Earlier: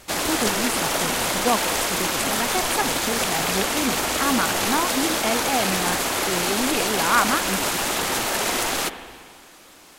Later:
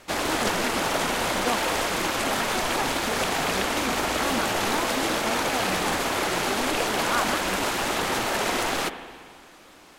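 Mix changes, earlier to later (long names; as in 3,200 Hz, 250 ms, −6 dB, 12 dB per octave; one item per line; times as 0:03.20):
speech −7.5 dB
master: add high-shelf EQ 5,000 Hz −10 dB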